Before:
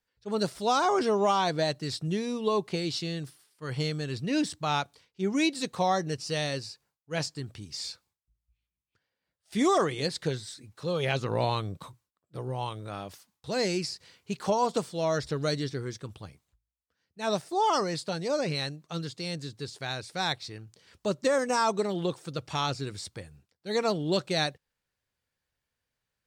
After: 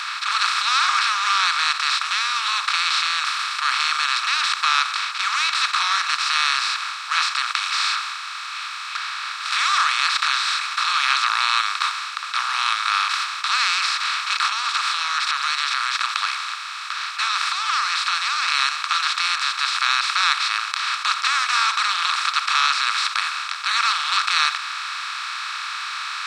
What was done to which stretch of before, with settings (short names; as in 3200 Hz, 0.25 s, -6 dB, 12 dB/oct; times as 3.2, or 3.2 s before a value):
14.45–18.48 compressor 16:1, threshold -36 dBFS
whole clip: per-bin compression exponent 0.2; elliptic high-pass 1200 Hz, stop band 60 dB; high shelf 7700 Hz -11 dB; gain +5 dB